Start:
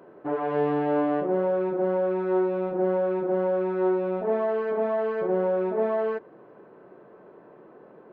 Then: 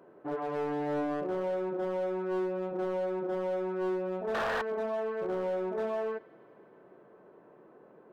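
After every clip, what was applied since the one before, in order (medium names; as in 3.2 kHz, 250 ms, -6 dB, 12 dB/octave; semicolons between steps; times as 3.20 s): feedback echo behind a high-pass 106 ms, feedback 82%, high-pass 1.7 kHz, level -18.5 dB; painted sound noise, 4.34–4.62 s, 430–1900 Hz -23 dBFS; hard clipper -21.5 dBFS, distortion -14 dB; trim -6.5 dB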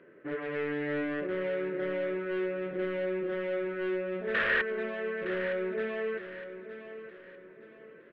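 FFT filter 550 Hz 0 dB, 790 Hz -16 dB, 1.9 kHz +13 dB, 3.1 kHz +6 dB, 6.2 kHz -16 dB; feedback delay 914 ms, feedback 36%, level -11.5 dB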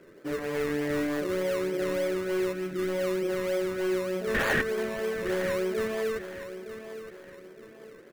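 time-frequency box 2.53–2.89 s, 390–1200 Hz -13 dB; in parallel at -3.5 dB: decimation with a swept rate 22×, swing 60% 3.3 Hz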